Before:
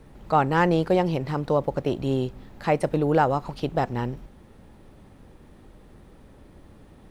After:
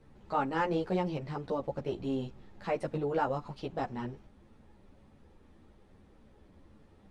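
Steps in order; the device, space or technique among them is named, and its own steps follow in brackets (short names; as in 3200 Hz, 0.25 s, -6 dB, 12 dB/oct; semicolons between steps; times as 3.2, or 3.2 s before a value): string-machine ensemble chorus (ensemble effect; LPF 8000 Hz 12 dB/oct); gain -6.5 dB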